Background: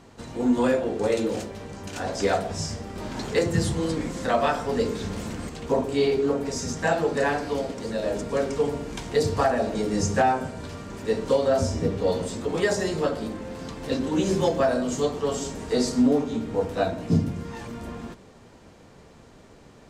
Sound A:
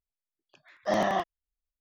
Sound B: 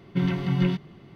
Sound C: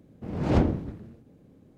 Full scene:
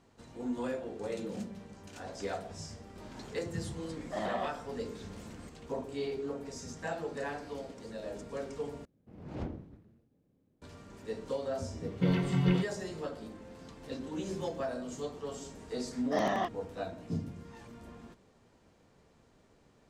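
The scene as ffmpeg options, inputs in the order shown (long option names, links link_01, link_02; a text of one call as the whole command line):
ffmpeg -i bed.wav -i cue0.wav -i cue1.wav -i cue2.wav -filter_complex "[3:a]asplit=2[link_01][link_02];[1:a]asplit=2[link_03][link_04];[0:a]volume=-14dB[link_05];[link_01]asuperpass=centerf=200:order=4:qfactor=4.8[link_06];[link_03]aresample=11025,aresample=44100[link_07];[link_05]asplit=2[link_08][link_09];[link_08]atrim=end=8.854[link_10];[link_02]atrim=end=1.77,asetpts=PTS-STARTPTS,volume=-17dB[link_11];[link_09]atrim=start=10.616[link_12];[link_06]atrim=end=1.77,asetpts=PTS-STARTPTS,volume=-9.5dB,afade=type=in:duration=0.004:curve=hsin,afade=type=out:start_time=1.766:duration=0.004:curve=hsin,adelay=820[link_13];[link_07]atrim=end=1.8,asetpts=PTS-STARTPTS,volume=-10dB,afade=type=in:duration=0.004:curve=hsin,afade=type=out:start_time=1.796:duration=0.004:curve=hsin,adelay=143325S[link_14];[2:a]atrim=end=1.15,asetpts=PTS-STARTPTS,volume=-4dB,afade=type=in:duration=0.004:curve=hsin,afade=type=out:start_time=1.146:duration=0.004:curve=hsin,adelay=523026S[link_15];[link_04]atrim=end=1.8,asetpts=PTS-STARTPTS,volume=-4.5dB,afade=type=in:duration=0.004:curve=hsin,afade=type=out:start_time=1.796:duration=0.004:curve=hsin,adelay=15250[link_16];[link_10][link_11]acrossfade=duration=0.004:curve1=hsin:curve2=hsin[link_17];[link_17][link_12]acrossfade=duration=0.004:curve1=hsin:curve2=hsin[link_18];[link_18][link_13][link_14][link_15][link_16]amix=inputs=5:normalize=0" out.wav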